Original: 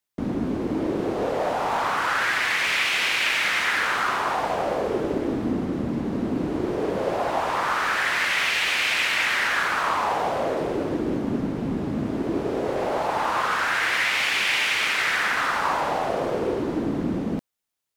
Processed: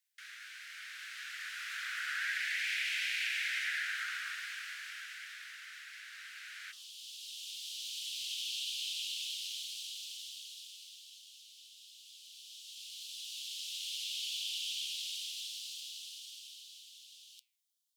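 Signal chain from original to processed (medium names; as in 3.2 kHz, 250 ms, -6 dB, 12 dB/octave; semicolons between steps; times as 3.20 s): steep high-pass 1.5 kHz 72 dB/octave, from 6.71 s 3 kHz; compression 2:1, threshold -43 dBFS, peak gain reduction 12.5 dB; flange 1.5 Hz, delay 6.3 ms, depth 5.6 ms, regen +87%; trim +4.5 dB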